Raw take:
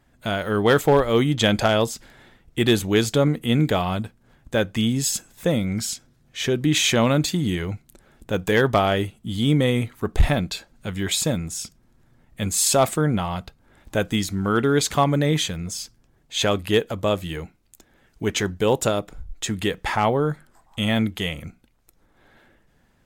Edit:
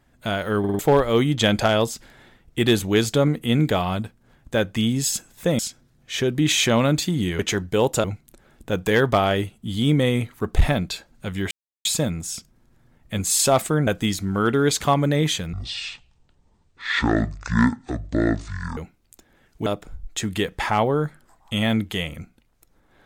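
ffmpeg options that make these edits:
-filter_complex "[0:a]asplit=13[s0][s1][s2][s3][s4][s5][s6][s7][s8][s9][s10][s11][s12];[s0]atrim=end=0.642[s13];[s1]atrim=start=0.588:end=0.642[s14];[s2]atrim=start=0.588:end=0.642[s15];[s3]atrim=start=0.588:end=0.642[s16];[s4]atrim=start=0.788:end=5.592[s17];[s5]atrim=start=5.848:end=7.652[s18];[s6]atrim=start=18.268:end=18.922[s19];[s7]atrim=start=7.648:end=11.12,asetpts=PTS-STARTPTS,afade=t=out:st=3.468:d=0.004:c=hsin,apad=pad_dur=0.34[s20];[s8]atrim=start=11.12:end=13.142,asetpts=PTS-STARTPTS,afade=t=in:d=0.004:c=hsin[s21];[s9]atrim=start=13.968:end=15.634[s22];[s10]atrim=start=15.63:end=17.38,asetpts=PTS-STARTPTS,asetrate=23814,aresample=44100[s23];[s11]atrim=start=17.376:end=18.272[s24];[s12]atrim=start=18.918[s25];[s13][s14]acrossfade=d=0.004:c1=hsin:c2=hsin[s26];[s26][s15]acrossfade=d=0.004:c1=hsin:c2=hsin[s27];[s27][s16]acrossfade=d=0.004:c1=hsin:c2=hsin[s28];[s28][s17]acrossfade=d=0.004:c1=hsin:c2=hsin[s29];[s29][s18]acrossfade=d=0.004:c1=hsin:c2=hsin[s30];[s30][s19]acrossfade=d=0.004:c1=hsin:c2=hsin[s31];[s20][s21]concat=n=2:v=0:a=1[s32];[s31][s32]acrossfade=d=0.004:c1=hsin:c2=hsin[s33];[s33][s22]acrossfade=d=0.004:c1=hsin:c2=hsin[s34];[s34][s23]acrossfade=d=0.004:c1=hsin:c2=hsin[s35];[s35][s24]acrossfade=d=0.004:c1=hsin:c2=hsin[s36];[s36][s25]acrossfade=d=0.004:c1=hsin:c2=hsin"

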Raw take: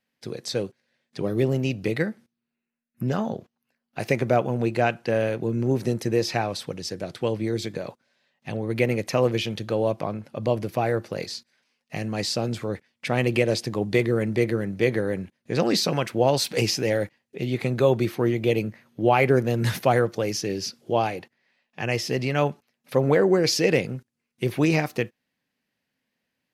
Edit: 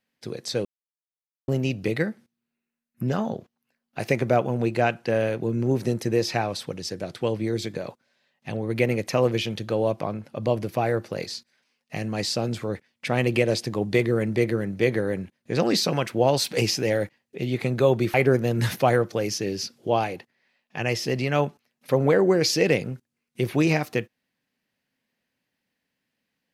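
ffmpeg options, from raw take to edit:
-filter_complex "[0:a]asplit=4[s0][s1][s2][s3];[s0]atrim=end=0.65,asetpts=PTS-STARTPTS,afade=t=out:st=0.646:d=0.004:c=hsin[s4];[s1]atrim=start=0.65:end=1.48,asetpts=PTS-STARTPTS,volume=0[s5];[s2]atrim=start=1.48:end=18.142,asetpts=PTS-STARTPTS,afade=t=in:d=0.004:c=hsin[s6];[s3]atrim=start=19.168[s7];[s4][s5][s6]concat=n=3:v=0:a=1[s8];[s8][s7]acrossfade=d=0.004:c1=hsin:c2=hsin"

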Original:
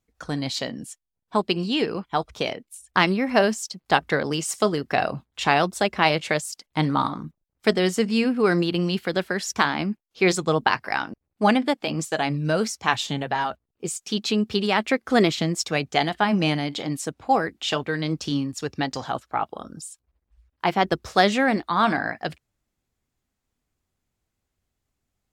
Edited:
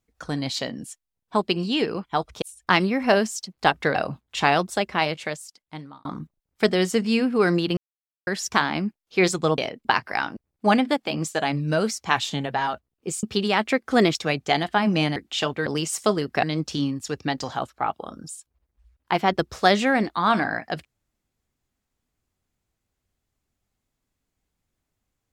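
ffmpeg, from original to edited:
-filter_complex "[0:a]asplit=13[s0][s1][s2][s3][s4][s5][s6][s7][s8][s9][s10][s11][s12];[s0]atrim=end=2.422[s13];[s1]atrim=start=2.688:end=4.222[s14];[s2]atrim=start=4.988:end=7.09,asetpts=PTS-STARTPTS,afade=t=out:st=0.552:d=1.55[s15];[s3]atrim=start=7.09:end=8.81,asetpts=PTS-STARTPTS,afade=t=in:d=0.004:c=hsin,afade=t=out:st=1.716:d=0.004:c=hsin[s16];[s4]atrim=start=8.81:end=9.31,asetpts=PTS-STARTPTS,volume=0[s17];[s5]atrim=start=9.31:end=10.622,asetpts=PTS-STARTPTS,afade=t=in:d=0.004:c=hsin[s18];[s6]atrim=start=2.418:end=2.692[s19];[s7]atrim=start=10.618:end=14.002[s20];[s8]atrim=start=14.418:end=15.342[s21];[s9]atrim=start=15.608:end=16.622[s22];[s10]atrim=start=17.458:end=17.962[s23];[s11]atrim=start=4.218:end=4.992[s24];[s12]atrim=start=17.958[s25];[s13][s14]acrossfade=d=0.004:c1=hsin:c2=hsin[s26];[s15][s16][s17][s18]concat=n=4:v=0:a=1[s27];[s26][s27]acrossfade=d=0.004:c1=hsin:c2=hsin[s28];[s28][s19]acrossfade=d=0.004:c1=hsin:c2=hsin[s29];[s29][s20]acrossfade=d=0.004:c1=hsin:c2=hsin[s30];[s30][s21]acrossfade=d=0.004:c1=hsin:c2=hsin[s31];[s31][s22]acrossfade=d=0.004:c1=hsin:c2=hsin[s32];[s32][s23]acrossfade=d=0.004:c1=hsin:c2=hsin[s33];[s33][s24]acrossfade=d=0.004:c1=hsin:c2=hsin[s34];[s34][s25]acrossfade=d=0.004:c1=hsin:c2=hsin"

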